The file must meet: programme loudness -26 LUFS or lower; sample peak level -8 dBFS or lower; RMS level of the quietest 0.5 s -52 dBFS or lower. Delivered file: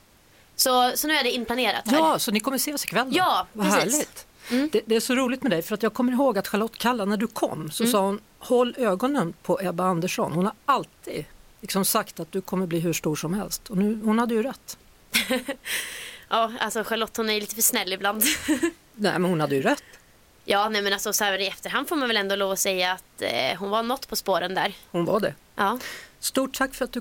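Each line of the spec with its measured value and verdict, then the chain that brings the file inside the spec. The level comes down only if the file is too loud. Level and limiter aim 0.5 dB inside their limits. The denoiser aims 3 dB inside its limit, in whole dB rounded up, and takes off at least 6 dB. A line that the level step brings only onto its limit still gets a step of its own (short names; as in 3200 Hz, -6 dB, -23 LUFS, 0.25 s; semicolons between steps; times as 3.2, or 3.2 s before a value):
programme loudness -24.5 LUFS: fail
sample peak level -7.0 dBFS: fail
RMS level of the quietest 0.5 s -56 dBFS: OK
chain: gain -2 dB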